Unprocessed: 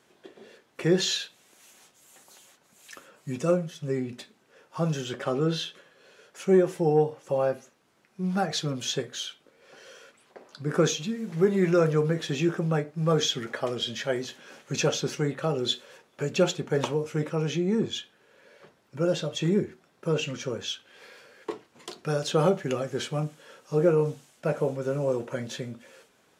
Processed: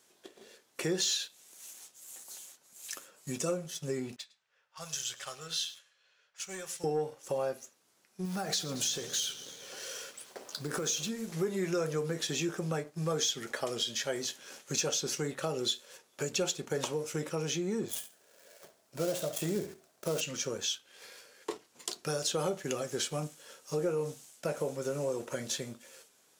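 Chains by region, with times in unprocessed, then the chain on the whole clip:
4.16–6.84 s: amplifier tone stack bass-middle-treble 10-0-10 + level-controlled noise filter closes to 1.9 kHz, open at -38 dBFS + delay 107 ms -17 dB
8.25–11.09 s: companding laws mixed up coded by mu + compression, threshold -27 dBFS + modulated delay 110 ms, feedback 77%, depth 104 cents, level -18 dB
17.88–20.21 s: dead-time distortion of 0.12 ms + peaking EQ 650 Hz +11.5 dB 0.25 oct + feedback delay 69 ms, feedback 26%, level -13 dB
whole clip: tone controls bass -5 dB, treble +13 dB; waveshaping leveller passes 1; compression 2.5:1, threshold -27 dBFS; trim -5 dB

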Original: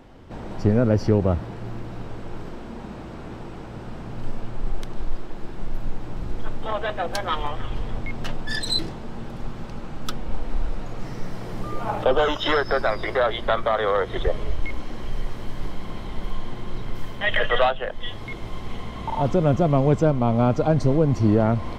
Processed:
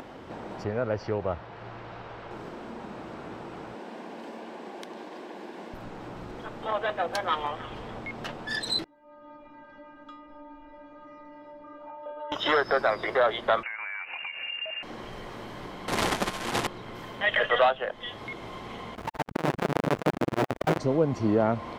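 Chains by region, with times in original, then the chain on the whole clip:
0.64–2.31 s: low-pass 4.5 kHz + peaking EQ 250 Hz -10.5 dB 1.6 oct
3.74–5.74 s: steep high-pass 200 Hz + band-stop 1.3 kHz, Q 5.3
8.84–12.32 s: low-pass 1.9 kHz + inharmonic resonator 290 Hz, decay 0.71 s, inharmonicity 0.008
13.63–14.83 s: bass shelf 150 Hz -12 dB + compression 10:1, threshold -30 dBFS + frequency inversion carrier 2.8 kHz
15.88–16.67 s: one-bit delta coder 64 kbps, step -27.5 dBFS + level flattener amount 100%
18.95–20.79 s: square wave that keeps the level + treble shelf 3.3 kHz -9.5 dB + transformer saturation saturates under 330 Hz
whole clip: high-pass 410 Hz 6 dB/octave; treble shelf 3.5 kHz -7 dB; upward compressor, threshold -35 dBFS

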